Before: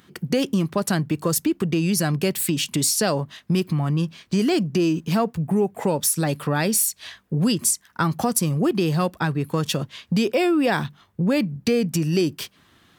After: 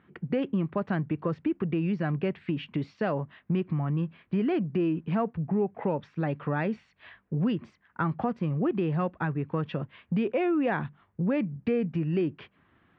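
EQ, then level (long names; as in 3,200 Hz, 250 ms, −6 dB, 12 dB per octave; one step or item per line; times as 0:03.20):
low-pass filter 2,500 Hz 24 dB per octave
high-frequency loss of the air 110 metres
−6.0 dB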